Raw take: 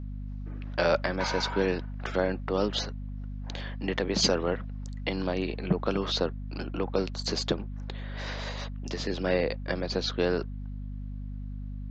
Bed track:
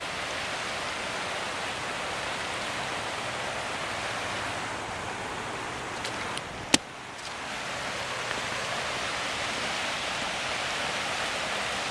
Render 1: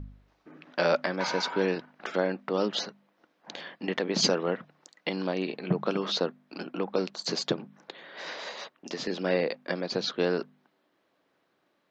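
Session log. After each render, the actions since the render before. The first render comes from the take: de-hum 50 Hz, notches 5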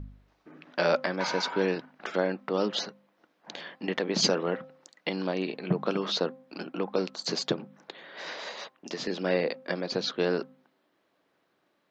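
de-hum 261.6 Hz, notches 5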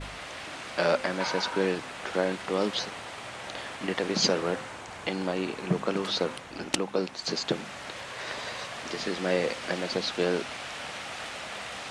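add bed track -7.5 dB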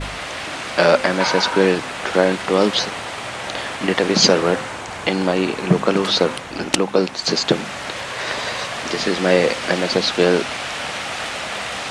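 gain +11.5 dB; limiter -1 dBFS, peak gain reduction 2.5 dB

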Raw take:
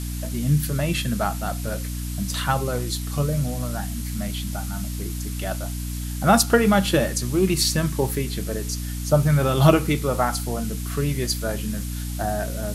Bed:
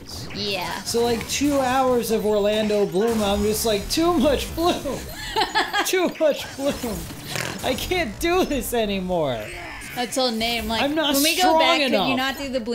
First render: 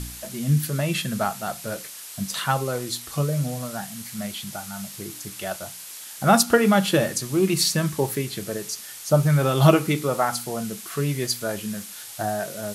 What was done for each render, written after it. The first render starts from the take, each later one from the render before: de-hum 60 Hz, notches 5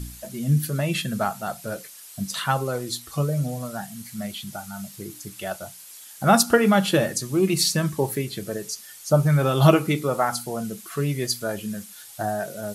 denoiser 8 dB, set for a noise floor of -40 dBFS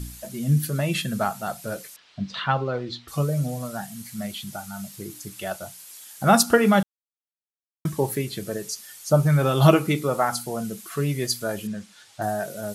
1.96–3.08 LPF 4000 Hz 24 dB/oct; 6.83–7.85 mute; 11.67–12.22 air absorption 97 m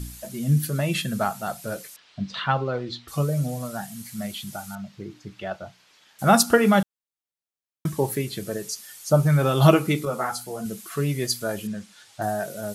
4.75–6.19 air absorption 220 m; 10.05–10.66 ensemble effect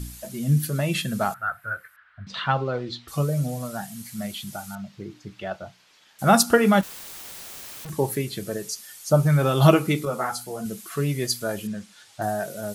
1.34–2.27 EQ curve 100 Hz 0 dB, 180 Hz -20 dB, 420 Hz -16 dB, 950 Hz -7 dB, 1500 Hz +12 dB, 2400 Hz -10 dB, 6300 Hz -30 dB, 14000 Hz -13 dB; 6.81–7.9 infinite clipping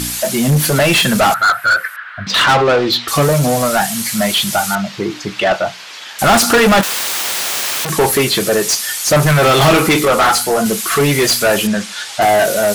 overdrive pedal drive 33 dB, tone 6200 Hz, clips at -3 dBFS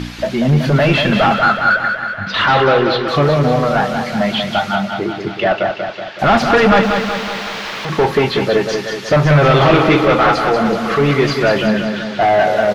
air absorption 260 m; feedback echo 0.187 s, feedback 58%, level -6 dB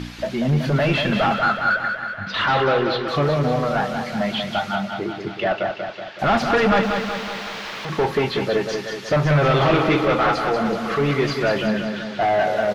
gain -6.5 dB

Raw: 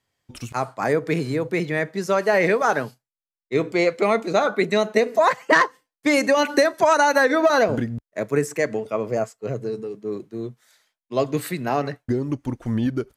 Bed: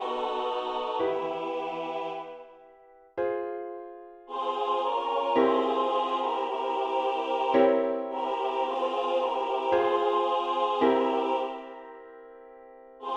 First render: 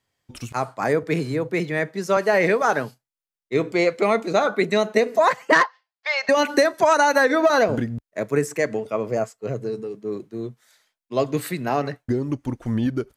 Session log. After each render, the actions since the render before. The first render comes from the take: 1.03–2.17 three-band expander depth 40%; 5.63–6.29 elliptic band-pass 690–4900 Hz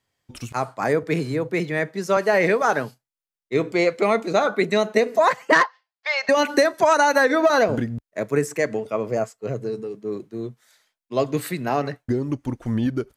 nothing audible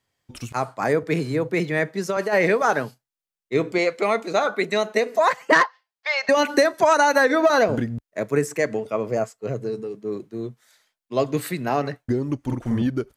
1.34–2.33 negative-ratio compressor -21 dBFS; 3.78–5.41 low shelf 300 Hz -8.5 dB; 12.41–12.82 doubler 48 ms -2 dB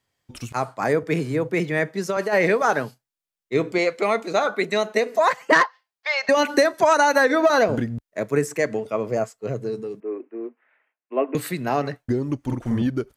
0.95–1.94 notch 4100 Hz; 10–11.35 Chebyshev band-pass 250–2700 Hz, order 5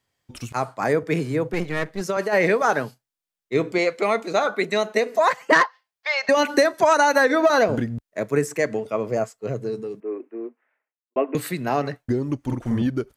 1.53–2.01 half-wave gain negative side -12 dB; 10.31–11.16 studio fade out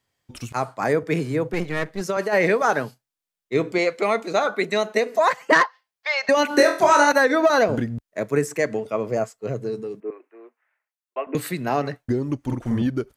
6.48–7.12 flutter echo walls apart 4.1 m, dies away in 0.38 s; 10.1–11.27 HPF 800 Hz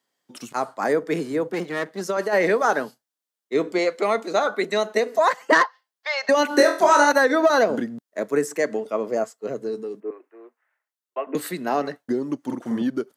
HPF 200 Hz 24 dB/oct; bell 2400 Hz -6 dB 0.34 oct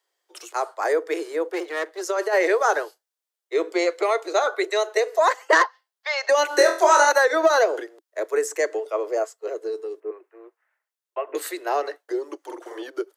steep high-pass 330 Hz 96 dB/oct; dynamic EQ 6800 Hz, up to +5 dB, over -47 dBFS, Q 2.8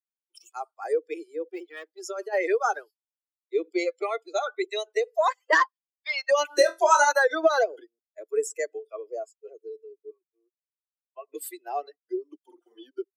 per-bin expansion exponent 2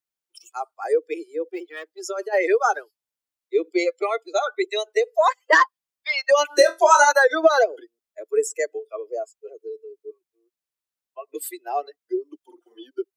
gain +5 dB; limiter -3 dBFS, peak gain reduction 1 dB

